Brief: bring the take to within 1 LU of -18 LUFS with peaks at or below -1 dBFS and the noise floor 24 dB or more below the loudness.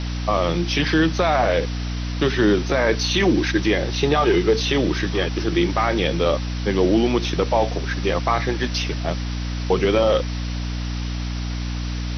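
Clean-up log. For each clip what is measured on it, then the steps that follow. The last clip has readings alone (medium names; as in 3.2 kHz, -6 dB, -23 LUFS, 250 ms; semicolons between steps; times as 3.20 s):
hum 60 Hz; highest harmonic 300 Hz; hum level -24 dBFS; noise floor -26 dBFS; noise floor target -45 dBFS; loudness -21.0 LUFS; peak level -6.0 dBFS; loudness target -18.0 LUFS
-> de-hum 60 Hz, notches 5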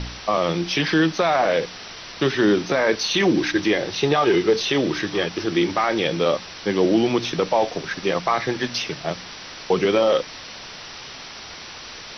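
hum not found; noise floor -38 dBFS; noise floor target -45 dBFS
-> noise print and reduce 7 dB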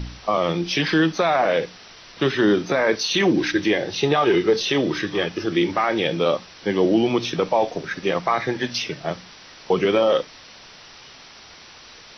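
noise floor -45 dBFS; loudness -21.0 LUFS; peak level -7.5 dBFS; loudness target -18.0 LUFS
-> trim +3 dB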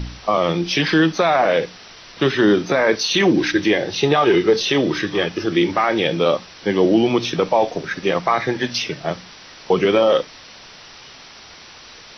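loudness -18.0 LUFS; peak level -4.5 dBFS; noise floor -42 dBFS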